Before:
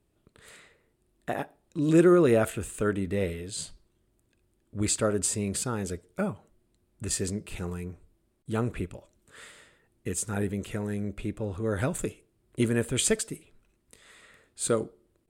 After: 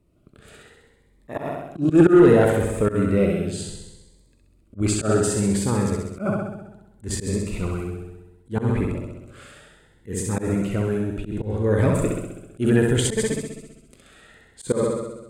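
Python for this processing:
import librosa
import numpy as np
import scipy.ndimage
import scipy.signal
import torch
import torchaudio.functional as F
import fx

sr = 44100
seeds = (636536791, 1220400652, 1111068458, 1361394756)

p1 = fx.high_shelf(x, sr, hz=2600.0, db=-10.5)
p2 = p1 + fx.room_flutter(p1, sr, wall_m=11.2, rt60_s=1.1, dry=0)
p3 = fx.auto_swell(p2, sr, attack_ms=109.0)
p4 = fx.dynamic_eq(p3, sr, hz=1200.0, q=0.83, threshold_db=-42.0, ratio=4.0, max_db=4)
p5 = fx.fold_sine(p4, sr, drive_db=9, ceiling_db=-4.0)
p6 = p4 + (p5 * librosa.db_to_amplitude(-9.0))
y = fx.notch_cascade(p6, sr, direction='rising', hz=0.66)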